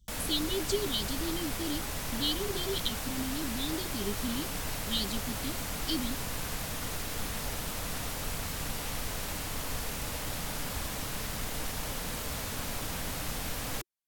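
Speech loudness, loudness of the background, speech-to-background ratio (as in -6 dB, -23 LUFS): -35.0 LUFS, -35.5 LUFS, 0.5 dB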